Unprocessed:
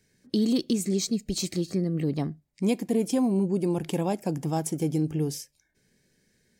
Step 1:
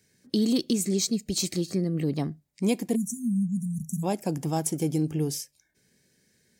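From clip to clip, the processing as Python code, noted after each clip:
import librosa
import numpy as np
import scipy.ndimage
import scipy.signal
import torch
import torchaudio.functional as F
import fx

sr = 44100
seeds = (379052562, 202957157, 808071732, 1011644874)

y = fx.spec_erase(x, sr, start_s=2.96, length_s=1.08, low_hz=240.0, high_hz=5600.0)
y = scipy.signal.sosfilt(scipy.signal.butter(2, 58.0, 'highpass', fs=sr, output='sos'), y)
y = fx.high_shelf(y, sr, hz=4300.0, db=5.0)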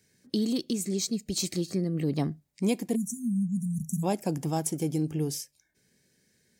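y = fx.rider(x, sr, range_db=10, speed_s=0.5)
y = y * 10.0 ** (-2.0 / 20.0)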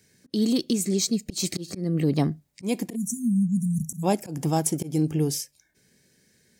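y = fx.auto_swell(x, sr, attack_ms=158.0)
y = y * 10.0 ** (5.5 / 20.0)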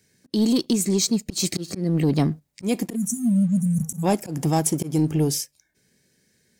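y = fx.leveller(x, sr, passes=1)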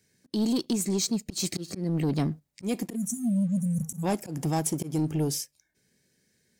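y = 10.0 ** (-12.5 / 20.0) * np.tanh(x / 10.0 ** (-12.5 / 20.0))
y = y * 10.0 ** (-5.0 / 20.0)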